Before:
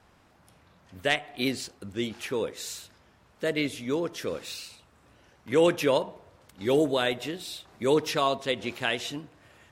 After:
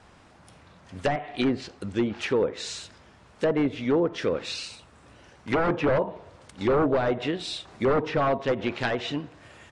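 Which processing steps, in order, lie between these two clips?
wave folding −22 dBFS
treble cut that deepens with the level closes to 1,200 Hz, closed at −26 dBFS
downsampling to 22,050 Hz
level +6.5 dB

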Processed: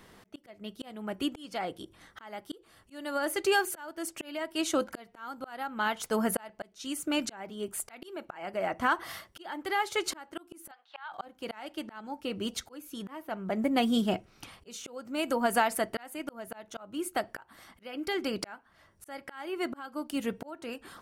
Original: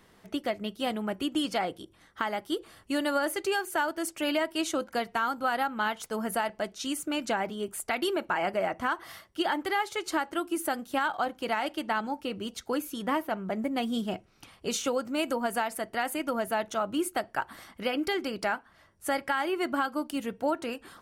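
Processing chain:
0:10.71–0:11.12: Chebyshev band-pass filter 770–4,100 Hz, order 3
volume swells 686 ms
level +4 dB

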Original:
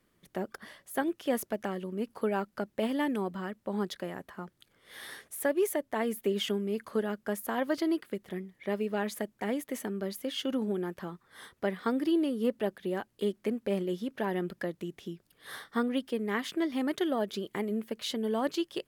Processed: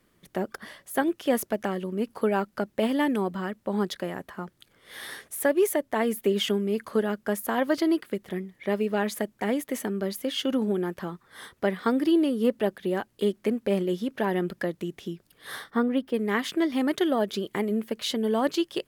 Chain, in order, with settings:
0:15.70–0:16.14: parametric band 7,500 Hz −11 dB 2.8 octaves
level +5.5 dB

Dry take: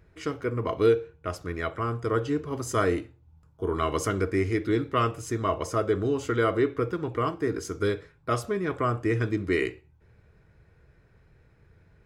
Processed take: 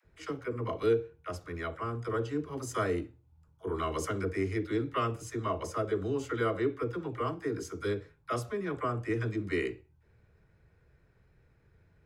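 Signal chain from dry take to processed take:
all-pass dispersion lows, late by 52 ms, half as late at 430 Hz
level −6 dB

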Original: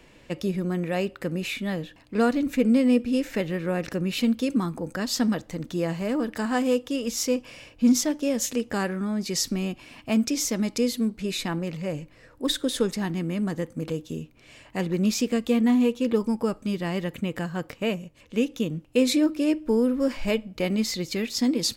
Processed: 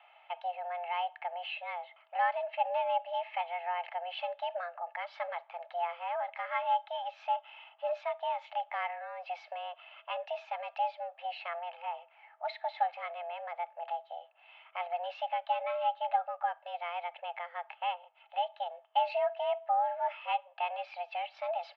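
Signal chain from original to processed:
comb filter 2.2 ms, depth 41%
single-sideband voice off tune +350 Hz 270–2,700 Hz
dynamic equaliser 1,200 Hz, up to −3 dB, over −37 dBFS, Q 0.74
level −5 dB

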